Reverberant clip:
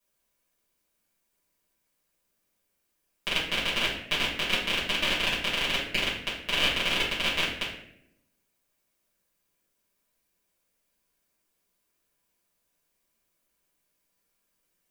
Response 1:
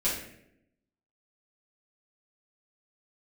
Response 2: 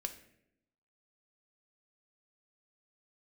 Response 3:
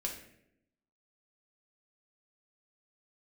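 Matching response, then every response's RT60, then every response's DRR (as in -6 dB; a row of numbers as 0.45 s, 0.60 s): 1; 0.75 s, 0.75 s, 0.75 s; -10.0 dB, 6.5 dB, -0.5 dB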